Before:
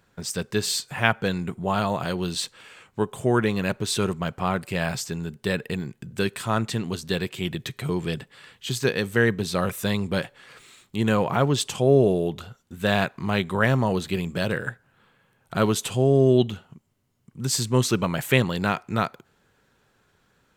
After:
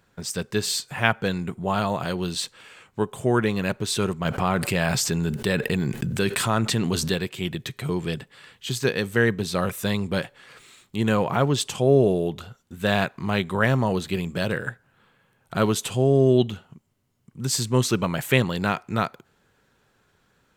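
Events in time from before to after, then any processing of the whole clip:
4.25–7.14 fast leveller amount 70%

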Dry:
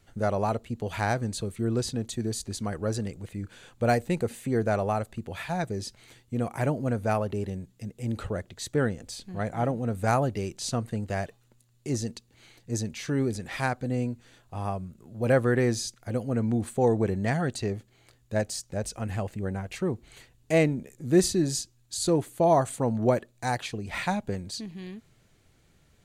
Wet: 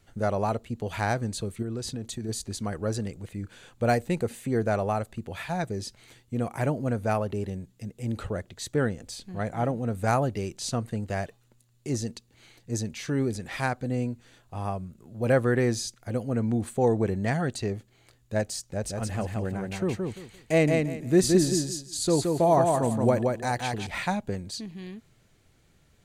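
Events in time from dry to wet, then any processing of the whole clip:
1.62–2.29 compressor, threshold -29 dBFS
18.66–23.87 feedback echo 0.172 s, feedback 23%, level -3.5 dB

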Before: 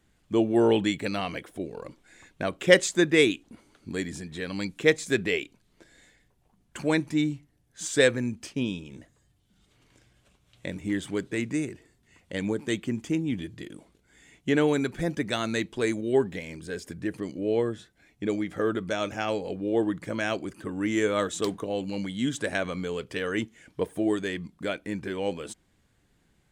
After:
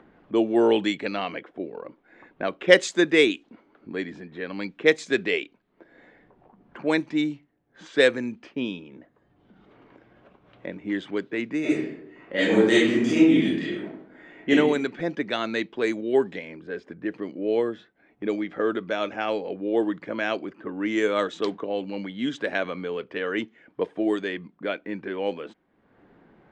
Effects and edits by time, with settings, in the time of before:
11.6–14.5 reverb throw, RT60 0.81 s, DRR -10 dB
whole clip: low-pass opened by the level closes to 1200 Hz, open at -18.5 dBFS; three-band isolator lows -19 dB, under 200 Hz, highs -16 dB, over 6400 Hz; upward compressor, threshold -44 dBFS; gain +2.5 dB

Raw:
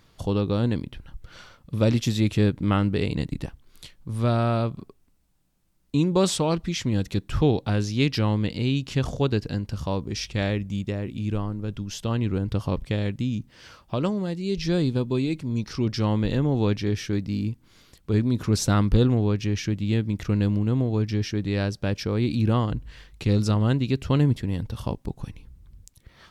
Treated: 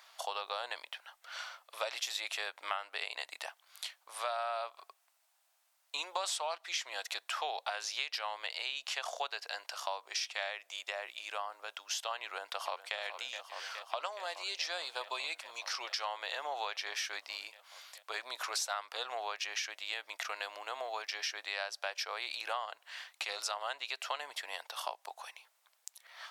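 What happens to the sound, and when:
12.23–12.98 echo throw 0.42 s, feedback 85%, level -12.5 dB
whole clip: elliptic high-pass 670 Hz, stop band 70 dB; compressor 6:1, threshold -38 dBFS; gain +4.5 dB

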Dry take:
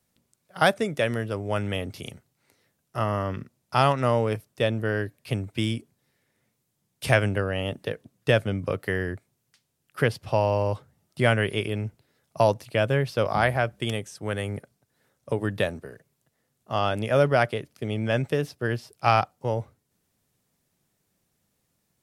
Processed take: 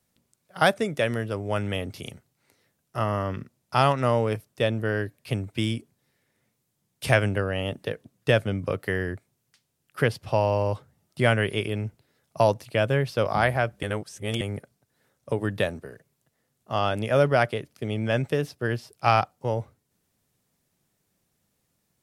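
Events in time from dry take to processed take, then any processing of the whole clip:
13.83–14.41 reverse

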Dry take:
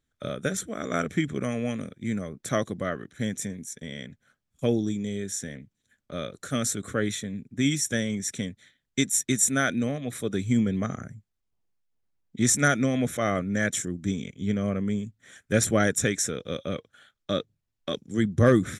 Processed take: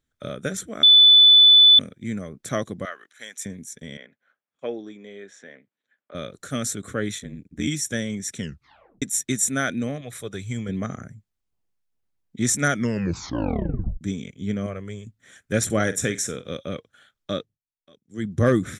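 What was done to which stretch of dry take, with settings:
0.83–1.79 bleep 3490 Hz -8.5 dBFS
2.85–3.46 HPF 950 Hz
3.97–6.15 BPF 490–2400 Hz
7.18–7.68 ring modulator 41 Hz
8.38 tape stop 0.64 s
10.01–10.69 bell 250 Hz -10.5 dB 1.2 oct
12.72 tape stop 1.29 s
14.66–15.07 bell 230 Hz -15 dB
15.65–16.52 flutter echo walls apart 8 m, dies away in 0.21 s
17.33–18.34 dip -24 dB, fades 0.27 s

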